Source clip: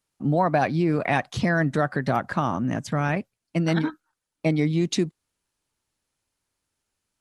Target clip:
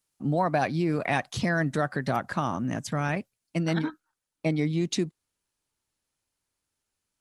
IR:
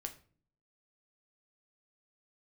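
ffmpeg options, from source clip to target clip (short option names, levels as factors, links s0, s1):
-af "asetnsamples=n=441:p=0,asendcmd='3.63 highshelf g 2.5',highshelf=f=4400:g=8,volume=0.631"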